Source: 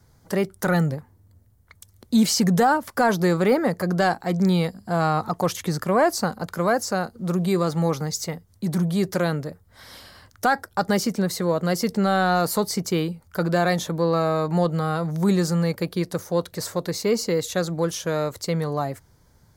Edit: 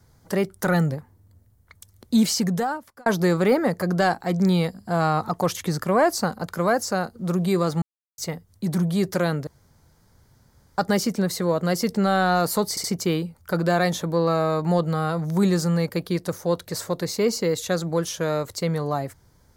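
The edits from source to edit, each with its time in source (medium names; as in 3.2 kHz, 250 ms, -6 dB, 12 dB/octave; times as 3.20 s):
2.14–3.06 s: fade out
7.82–8.18 s: mute
9.47–10.78 s: room tone
12.70 s: stutter 0.07 s, 3 plays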